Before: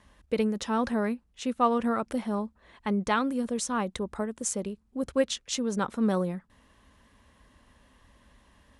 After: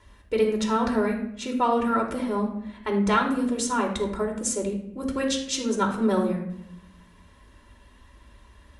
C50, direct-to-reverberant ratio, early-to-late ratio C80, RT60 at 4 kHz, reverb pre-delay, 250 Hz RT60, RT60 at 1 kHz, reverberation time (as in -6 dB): 7.0 dB, -0.5 dB, 10.5 dB, 0.50 s, 3 ms, 1.2 s, 0.70 s, 0.75 s